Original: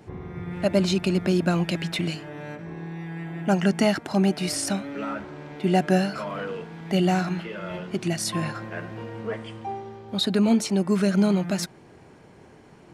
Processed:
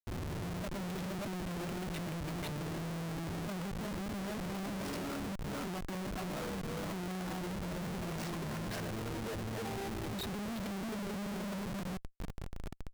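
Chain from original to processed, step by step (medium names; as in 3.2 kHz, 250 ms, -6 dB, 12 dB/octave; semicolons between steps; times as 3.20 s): chunks repeated in reverse 315 ms, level -1.5 dB; treble shelf 5.6 kHz -11 dB; compression 3:1, threshold -36 dBFS, peak gain reduction 17 dB; repeats whose band climbs or falls 281 ms, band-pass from 240 Hz, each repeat 0.7 oct, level -11.5 dB; Schmitt trigger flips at -40 dBFS; trim -3 dB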